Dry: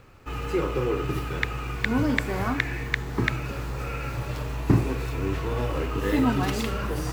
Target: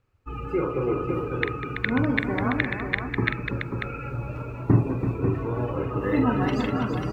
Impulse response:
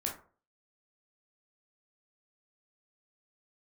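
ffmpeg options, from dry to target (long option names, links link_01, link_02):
-filter_complex "[0:a]afftdn=noise_reduction=22:noise_floor=-33,asplit=2[link_01][link_02];[link_02]aecho=0:1:44|198|332|541:0.376|0.211|0.422|0.447[link_03];[link_01][link_03]amix=inputs=2:normalize=0"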